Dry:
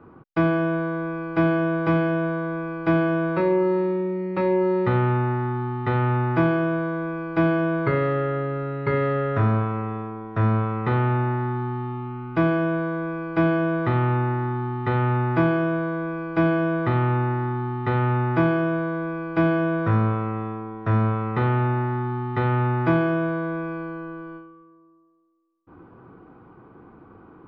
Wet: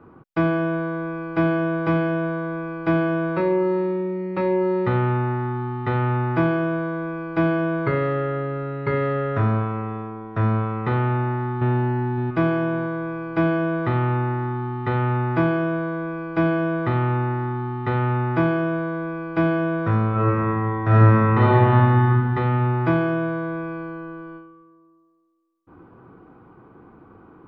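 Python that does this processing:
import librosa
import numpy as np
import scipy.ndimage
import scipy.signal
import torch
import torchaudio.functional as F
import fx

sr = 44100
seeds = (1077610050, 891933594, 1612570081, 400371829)

y = fx.echo_throw(x, sr, start_s=11.05, length_s=0.69, ms=560, feedback_pct=25, wet_db=-1.0)
y = fx.reverb_throw(y, sr, start_s=20.11, length_s=1.92, rt60_s=2.3, drr_db=-7.0)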